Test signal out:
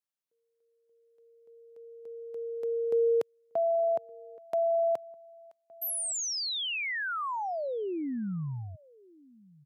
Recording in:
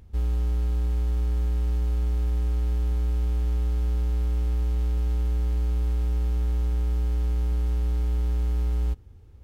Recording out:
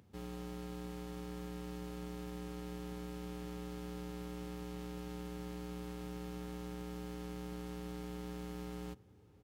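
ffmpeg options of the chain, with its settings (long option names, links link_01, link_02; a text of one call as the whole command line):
ffmpeg -i in.wav -filter_complex "[0:a]highpass=frequency=120:width=0.5412,highpass=frequency=120:width=1.3066,asplit=2[link_01][link_02];[link_02]adelay=1166,volume=-24dB,highshelf=frequency=4000:gain=-26.2[link_03];[link_01][link_03]amix=inputs=2:normalize=0,volume=-4.5dB" out.wav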